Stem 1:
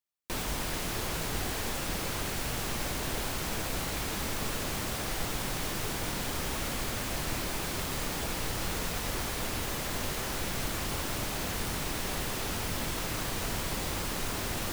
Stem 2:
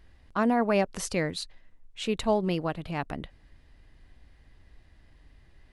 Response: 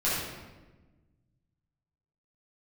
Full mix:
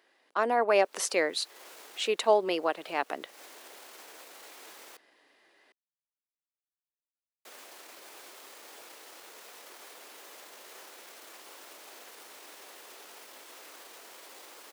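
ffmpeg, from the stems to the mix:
-filter_complex "[0:a]alimiter=level_in=2.5dB:limit=-24dB:level=0:latency=1:release=15,volume=-2.5dB,adelay=550,volume=-15.5dB,asplit=3[link_01][link_02][link_03];[link_01]atrim=end=4.97,asetpts=PTS-STARTPTS,afade=type=out:start_time=4.966:duration=0.004:curve=hsin[link_04];[link_02]atrim=start=4.97:end=7.45,asetpts=PTS-STARTPTS,volume=0[link_05];[link_03]atrim=start=7.45,asetpts=PTS-STARTPTS,afade=type=in:duration=0.004:curve=hsin[link_06];[link_04][link_05][link_06]concat=n=3:v=0:a=1[link_07];[1:a]volume=0dB,asplit=2[link_08][link_09];[link_09]apad=whole_len=673597[link_10];[link_07][link_10]sidechaincompress=threshold=-40dB:ratio=6:attack=16:release=277[link_11];[link_11][link_08]amix=inputs=2:normalize=0,highpass=frequency=370:width=0.5412,highpass=frequency=370:width=1.3066,dynaudnorm=framelen=260:gausssize=5:maxgain=3.5dB"

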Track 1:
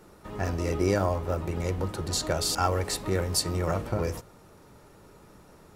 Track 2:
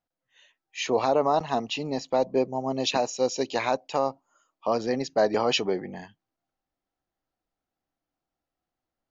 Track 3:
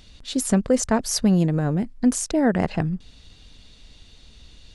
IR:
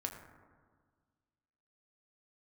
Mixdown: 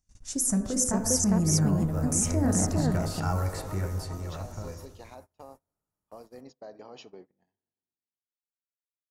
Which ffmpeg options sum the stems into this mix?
-filter_complex "[0:a]highshelf=frequency=4000:gain=10,acrossover=split=3400[link_01][link_02];[link_02]acompressor=threshold=-43dB:ratio=4:attack=1:release=60[link_03];[link_01][link_03]amix=inputs=2:normalize=0,adelay=650,volume=-2.5dB,afade=type=in:start_time=1.87:duration=0.28:silence=0.421697,afade=type=out:start_time=3.58:duration=0.71:silence=0.334965,asplit=2[link_04][link_05];[link_05]volume=-4.5dB[link_06];[1:a]acompressor=threshold=-35dB:ratio=2.5,adelay=1450,volume=-15dB,asplit=2[link_07][link_08];[link_08]volume=-4dB[link_09];[2:a]highshelf=frequency=4900:width_type=q:width=3:gain=6.5,volume=-6dB,asplit=3[link_10][link_11][link_12];[link_11]volume=-4dB[link_13];[link_12]volume=-5dB[link_14];[link_04][link_10]amix=inputs=2:normalize=0,acrossover=split=470|3000[link_15][link_16][link_17];[link_16]acompressor=threshold=-40dB:ratio=6[link_18];[link_15][link_18][link_17]amix=inputs=3:normalize=0,alimiter=limit=-19.5dB:level=0:latency=1:release=20,volume=0dB[link_19];[3:a]atrim=start_sample=2205[link_20];[link_06][link_09][link_13]amix=inputs=3:normalize=0[link_21];[link_21][link_20]afir=irnorm=-1:irlink=0[link_22];[link_14]aecho=0:1:404:1[link_23];[link_07][link_19][link_22][link_23]amix=inputs=4:normalize=0,agate=range=-27dB:threshold=-47dB:ratio=16:detection=peak,equalizer=frequency=2300:width_type=o:width=2.2:gain=-4.5,asoftclip=type=hard:threshold=-14dB"

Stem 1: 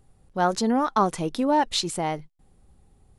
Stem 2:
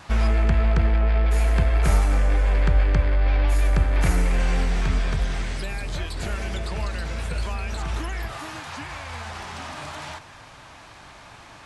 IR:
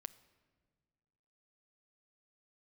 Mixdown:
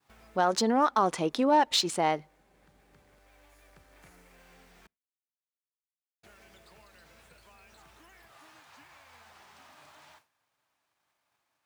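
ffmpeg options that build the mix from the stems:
-filter_complex "[0:a]adynamicsmooth=sensitivity=4.5:basefreq=5700,lowshelf=frequency=67:gain=-11.5,alimiter=limit=-16dB:level=0:latency=1:release=66,volume=1.5dB,asplit=3[link_01][link_02][link_03];[link_02]volume=-14.5dB[link_04];[1:a]acompressor=threshold=-31dB:ratio=3,acrusher=bits=7:mix=0:aa=0.000001,volume=-18.5dB,asplit=3[link_05][link_06][link_07];[link_05]atrim=end=4.87,asetpts=PTS-STARTPTS,afade=type=out:start_time=4.866:duration=0.004:curve=hsin[link_08];[link_06]atrim=start=4.87:end=6.23,asetpts=PTS-STARTPTS,volume=0[link_09];[link_07]atrim=start=6.23,asetpts=PTS-STARTPTS,afade=type=in:duration=0.004:curve=hsin[link_10];[link_08][link_09][link_10]concat=n=3:v=0:a=1,asplit=2[link_11][link_12];[link_12]volume=-11dB[link_13];[link_03]apad=whole_len=514072[link_14];[link_11][link_14]sidechaincompress=threshold=-40dB:ratio=3:attack=16:release=1190[link_15];[2:a]atrim=start_sample=2205[link_16];[link_04][link_13]amix=inputs=2:normalize=0[link_17];[link_17][link_16]afir=irnorm=-1:irlink=0[link_18];[link_01][link_15][link_18]amix=inputs=3:normalize=0,agate=range=-33dB:threshold=-51dB:ratio=3:detection=peak,highpass=frequency=330:poles=1"

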